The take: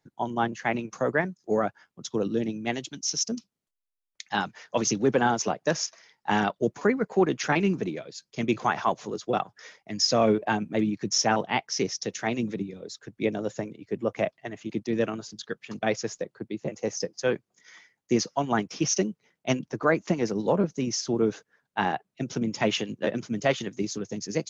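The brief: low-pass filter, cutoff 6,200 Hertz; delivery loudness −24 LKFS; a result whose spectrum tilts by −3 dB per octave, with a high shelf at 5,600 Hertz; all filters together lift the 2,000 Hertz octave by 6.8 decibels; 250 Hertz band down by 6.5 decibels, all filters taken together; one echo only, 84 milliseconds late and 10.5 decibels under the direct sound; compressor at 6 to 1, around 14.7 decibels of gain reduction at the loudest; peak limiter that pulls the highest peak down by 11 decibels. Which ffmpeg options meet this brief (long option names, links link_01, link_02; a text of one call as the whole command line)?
ffmpeg -i in.wav -af "lowpass=6200,equalizer=frequency=250:width_type=o:gain=-9,equalizer=frequency=2000:width_type=o:gain=8,highshelf=frequency=5600:gain=6.5,acompressor=threshold=-33dB:ratio=6,alimiter=level_in=3.5dB:limit=-24dB:level=0:latency=1,volume=-3.5dB,aecho=1:1:84:0.299,volume=16dB" out.wav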